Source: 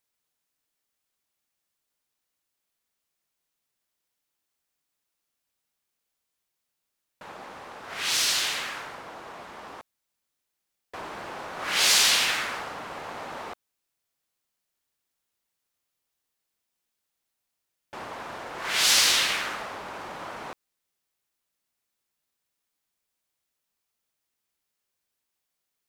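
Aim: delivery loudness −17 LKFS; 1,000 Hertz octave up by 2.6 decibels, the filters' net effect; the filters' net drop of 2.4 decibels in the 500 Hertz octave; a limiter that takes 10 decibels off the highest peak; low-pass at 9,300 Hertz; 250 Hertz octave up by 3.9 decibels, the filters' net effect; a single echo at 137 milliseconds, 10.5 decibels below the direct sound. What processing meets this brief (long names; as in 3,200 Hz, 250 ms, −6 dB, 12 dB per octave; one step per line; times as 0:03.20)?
low-pass filter 9,300 Hz
parametric band 250 Hz +7 dB
parametric band 500 Hz −6.5 dB
parametric band 1,000 Hz +4.5 dB
brickwall limiter −18 dBFS
single-tap delay 137 ms −10.5 dB
level +13 dB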